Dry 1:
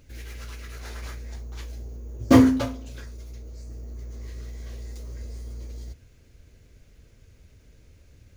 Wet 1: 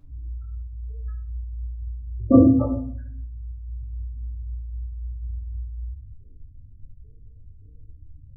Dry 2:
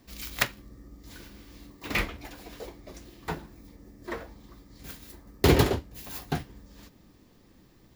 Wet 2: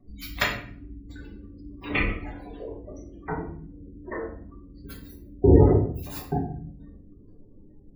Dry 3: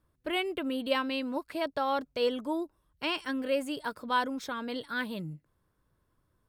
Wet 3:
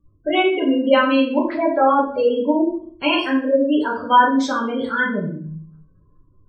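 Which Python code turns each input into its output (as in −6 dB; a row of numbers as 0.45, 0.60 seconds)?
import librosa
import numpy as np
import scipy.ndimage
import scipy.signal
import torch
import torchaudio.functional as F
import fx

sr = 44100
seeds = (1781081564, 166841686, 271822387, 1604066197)

y = fx.spec_gate(x, sr, threshold_db=-15, keep='strong')
y = fx.vibrato(y, sr, rate_hz=3.8, depth_cents=30.0)
y = fx.room_shoebox(y, sr, seeds[0], volume_m3=64.0, walls='mixed', distance_m=1.1)
y = y * 10.0 ** (-3 / 20.0) / np.max(np.abs(y))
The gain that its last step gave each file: −1.0, −0.5, +9.5 decibels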